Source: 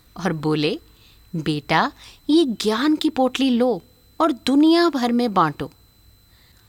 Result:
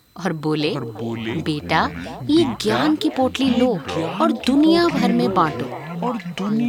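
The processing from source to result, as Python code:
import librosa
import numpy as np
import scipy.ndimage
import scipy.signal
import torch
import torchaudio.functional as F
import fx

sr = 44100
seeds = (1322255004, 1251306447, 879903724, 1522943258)

y = scipy.signal.sosfilt(scipy.signal.butter(2, 91.0, 'highpass', fs=sr, output='sos'), x)
y = fx.echo_pitch(y, sr, ms=414, semitones=-5, count=3, db_per_echo=-6.0)
y = fx.echo_stepped(y, sr, ms=350, hz=510.0, octaves=0.7, feedback_pct=70, wet_db=-9.5)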